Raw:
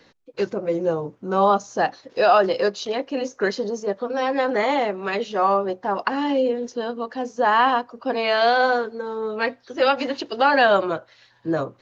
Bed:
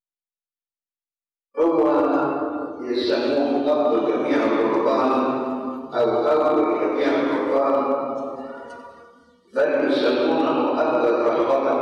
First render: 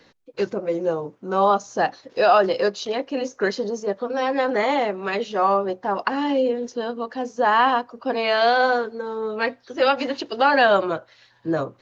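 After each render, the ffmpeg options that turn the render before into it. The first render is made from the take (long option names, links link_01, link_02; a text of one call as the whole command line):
ffmpeg -i in.wav -filter_complex "[0:a]asettb=1/sr,asplit=3[link_01][link_02][link_03];[link_01]atrim=end=0.604[link_04];[link_02]atrim=start=0.6:end=1.66,asetpts=PTS-STARTPTS,afade=type=in:duration=0.004:curve=qsin,afade=type=out:start_time=1.056:duration=0.004:curve=qsin,highpass=frequency=200:poles=1[link_05];[link_03]atrim=start=1.656[link_06];[link_04][link_05]acrossfade=duration=0.004:curve1=hsin:curve2=qsin[link_07];[link_07][link_06]acrossfade=duration=0.004:curve1=qsin:curve2=hsin" out.wav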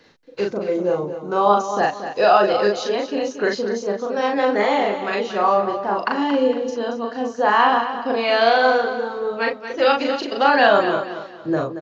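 ffmpeg -i in.wav -filter_complex "[0:a]asplit=2[link_01][link_02];[link_02]adelay=39,volume=-2.5dB[link_03];[link_01][link_03]amix=inputs=2:normalize=0,asplit=2[link_04][link_05];[link_05]aecho=0:1:230|460|690|920:0.299|0.0985|0.0325|0.0107[link_06];[link_04][link_06]amix=inputs=2:normalize=0" out.wav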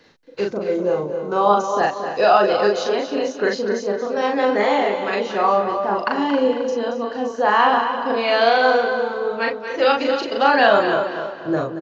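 ffmpeg -i in.wav -filter_complex "[0:a]asplit=2[link_01][link_02];[link_02]adelay=267,lowpass=frequency=4500:poles=1,volume=-10dB,asplit=2[link_03][link_04];[link_04]adelay=267,lowpass=frequency=4500:poles=1,volume=0.42,asplit=2[link_05][link_06];[link_06]adelay=267,lowpass=frequency=4500:poles=1,volume=0.42,asplit=2[link_07][link_08];[link_08]adelay=267,lowpass=frequency=4500:poles=1,volume=0.42[link_09];[link_01][link_03][link_05][link_07][link_09]amix=inputs=5:normalize=0" out.wav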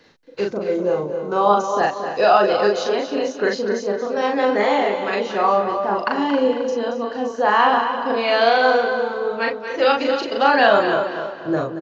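ffmpeg -i in.wav -af anull out.wav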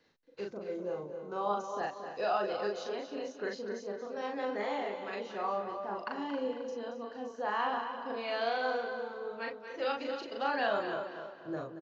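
ffmpeg -i in.wav -af "volume=-17dB" out.wav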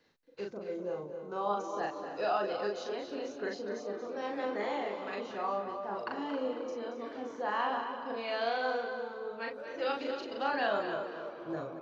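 ffmpeg -i in.wav -i bed.wav -filter_complex "[1:a]volume=-27dB[link_01];[0:a][link_01]amix=inputs=2:normalize=0" out.wav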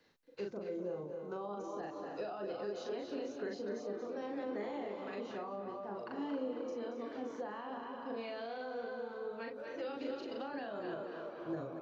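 ffmpeg -i in.wav -filter_complex "[0:a]alimiter=level_in=3dB:limit=-24dB:level=0:latency=1:release=60,volume=-3dB,acrossover=split=460[link_01][link_02];[link_02]acompressor=threshold=-46dB:ratio=5[link_03];[link_01][link_03]amix=inputs=2:normalize=0" out.wav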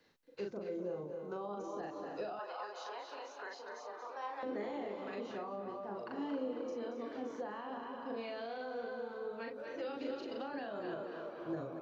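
ffmpeg -i in.wav -filter_complex "[0:a]asettb=1/sr,asplit=3[link_01][link_02][link_03];[link_01]atrim=end=2.394[link_04];[link_02]atrim=start=2.39:end=4.43,asetpts=PTS-STARTPTS,afade=type=in:duration=0.004:curve=qsin,afade=type=out:start_time=2.036:duration=0.004:curve=qsin,highpass=frequency=940:width_type=q:width=3.9[link_05];[link_03]atrim=start=4.426[link_06];[link_04][link_05]acrossfade=duration=0.004:curve1=hsin:curve2=qsin[link_07];[link_07][link_06]acrossfade=duration=0.004:curve1=qsin:curve2=hsin" out.wav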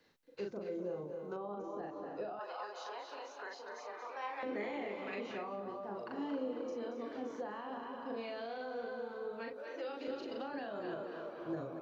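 ffmpeg -i in.wav -filter_complex "[0:a]asettb=1/sr,asplit=3[link_01][link_02][link_03];[link_01]atrim=end=1.364[link_04];[link_02]atrim=start=1.36:end=2.41,asetpts=PTS-STARTPTS,afade=type=in:duration=0.004:curve=qsin,afade=type=out:start_time=1.046:duration=0.004:curve=qsin,lowpass=frequency=1600:poles=1[link_05];[link_03]atrim=start=2.406[link_06];[link_04][link_05]acrossfade=duration=0.004:curve1=hsin:curve2=qsin[link_07];[link_07][link_06]acrossfade=duration=0.004:curve1=qsin:curve2=hsin,asettb=1/sr,asplit=3[link_08][link_09][link_10];[link_08]atrim=end=3.784[link_11];[link_09]atrim=start=3.78:end=5.6,asetpts=PTS-STARTPTS,afade=type=in:duration=0.004:curve=qsin,afade=type=out:start_time=1.816:duration=0.004:curve=qsin,equalizer=frequency=2300:width=2.6:gain=11[link_12];[link_10]atrim=start=5.596[link_13];[link_11][link_12]acrossfade=duration=0.004:curve1=hsin:curve2=qsin[link_14];[link_14][link_13]acrossfade=duration=0.004:curve1=qsin:curve2=hsin,asettb=1/sr,asplit=3[link_15][link_16][link_17];[link_15]atrim=end=9.534[link_18];[link_16]atrim=start=9.53:end=10.08,asetpts=PTS-STARTPTS,afade=type=in:duration=0.004:curve=qsin,afade=type=out:start_time=0.546:duration=0.004:curve=qsin,highpass=320[link_19];[link_17]atrim=start=10.076[link_20];[link_18][link_19]acrossfade=duration=0.004:curve1=hsin:curve2=qsin[link_21];[link_21][link_20]acrossfade=duration=0.004:curve1=qsin:curve2=hsin" out.wav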